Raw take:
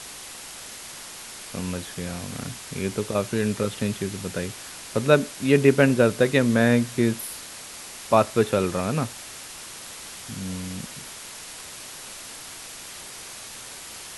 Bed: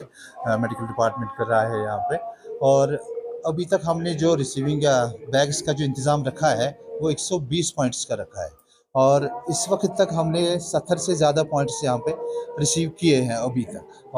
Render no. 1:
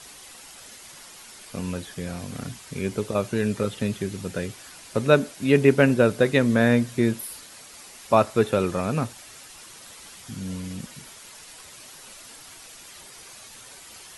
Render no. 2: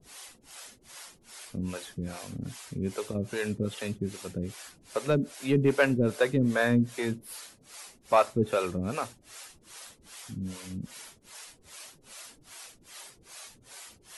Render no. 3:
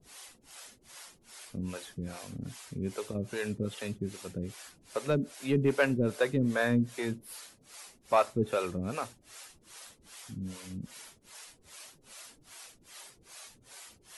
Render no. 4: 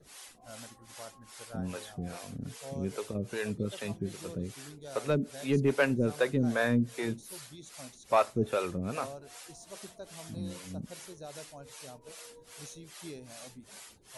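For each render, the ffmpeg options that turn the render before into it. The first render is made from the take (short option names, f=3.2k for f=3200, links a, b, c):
-af "afftdn=nr=8:nf=-40"
-filter_complex "[0:a]asoftclip=type=tanh:threshold=-8.5dB,acrossover=split=410[a][b];[a]aeval=exprs='val(0)*(1-1/2+1/2*cos(2*PI*2.5*n/s))':c=same[c];[b]aeval=exprs='val(0)*(1-1/2-1/2*cos(2*PI*2.5*n/s))':c=same[d];[c][d]amix=inputs=2:normalize=0"
-af "volume=-3dB"
-filter_complex "[1:a]volume=-27dB[a];[0:a][a]amix=inputs=2:normalize=0"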